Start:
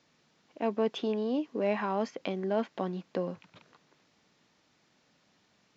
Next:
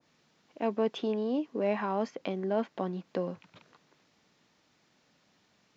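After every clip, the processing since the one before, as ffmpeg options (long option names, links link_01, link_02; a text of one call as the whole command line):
ffmpeg -i in.wav -af "adynamicequalizer=threshold=0.00398:dfrequency=1600:dqfactor=0.7:tfrequency=1600:tqfactor=0.7:attack=5:release=100:ratio=0.375:range=1.5:mode=cutabove:tftype=highshelf" out.wav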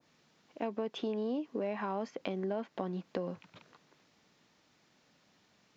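ffmpeg -i in.wav -af "acompressor=threshold=-31dB:ratio=10" out.wav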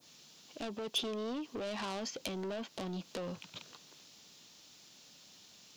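ffmpeg -i in.wav -af "asoftclip=type=tanh:threshold=-38dB,aexciter=amount=4.1:drive=5.5:freq=2800,volume=2.5dB" out.wav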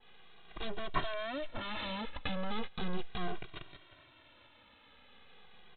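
ffmpeg -i in.wav -filter_complex "[0:a]aresample=8000,aeval=exprs='abs(val(0))':channel_layout=same,aresample=44100,asplit=2[link_01][link_02];[link_02]adelay=2,afreqshift=-0.37[link_03];[link_01][link_03]amix=inputs=2:normalize=1,volume=9.5dB" out.wav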